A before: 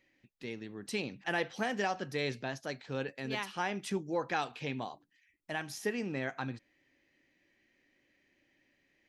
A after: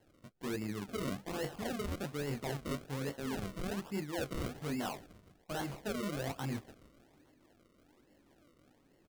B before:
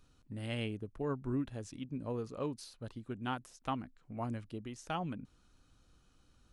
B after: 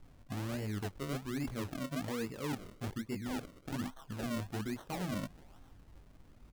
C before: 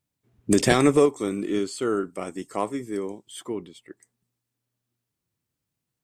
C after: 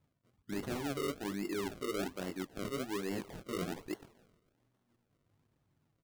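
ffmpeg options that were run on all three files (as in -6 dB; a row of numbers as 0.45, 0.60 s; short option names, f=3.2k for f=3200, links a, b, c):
-filter_complex "[0:a]aresample=32000,aresample=44100,acrossover=split=560[a][b];[a]acontrast=90[c];[b]aecho=1:1:144|288|432|576|720|864:0.158|0.0951|0.0571|0.0342|0.0205|0.0123[d];[c][d]amix=inputs=2:normalize=0,flanger=delay=19.5:depth=2.2:speed=1.5,areverse,acompressor=threshold=-39dB:ratio=16,areverse,acrusher=samples=36:mix=1:aa=0.000001:lfo=1:lforange=36:lforate=1.2,asoftclip=type=hard:threshold=-36.5dB,volume=5.5dB"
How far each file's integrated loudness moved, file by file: -2.5, +1.0, -14.5 LU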